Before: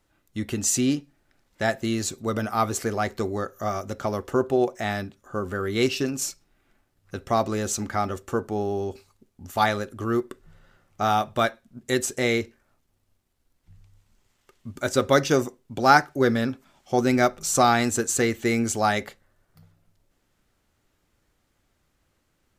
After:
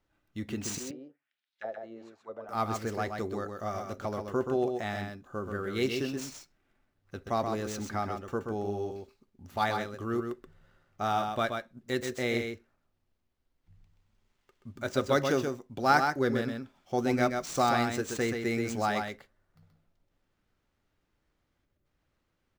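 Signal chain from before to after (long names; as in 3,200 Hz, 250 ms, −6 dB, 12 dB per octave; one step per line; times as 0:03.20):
running median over 5 samples
0:00.78–0:02.49: envelope filter 530–4,000 Hz, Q 3.3, down, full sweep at −21.5 dBFS
0:21.65–0:21.85: gain on a spectral selection 630–11,000 Hz −10 dB
single-tap delay 128 ms −5.5 dB
level −7.5 dB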